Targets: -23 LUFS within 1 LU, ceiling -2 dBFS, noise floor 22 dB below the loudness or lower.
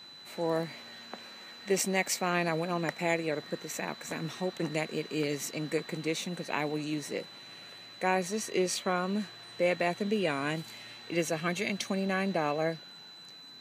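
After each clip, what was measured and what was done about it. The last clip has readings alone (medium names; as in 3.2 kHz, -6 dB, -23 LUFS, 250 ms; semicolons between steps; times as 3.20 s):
steady tone 4 kHz; tone level -48 dBFS; loudness -32.0 LUFS; peak level -13.0 dBFS; loudness target -23.0 LUFS
-> band-stop 4 kHz, Q 30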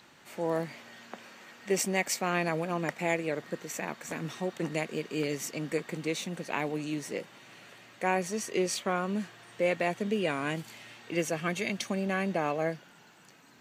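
steady tone not found; loudness -32.0 LUFS; peak level -13.0 dBFS; loudness target -23.0 LUFS
-> trim +9 dB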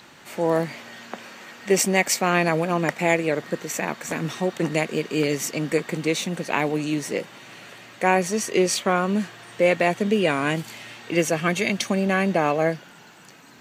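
loudness -23.0 LUFS; peak level -4.0 dBFS; noise floor -48 dBFS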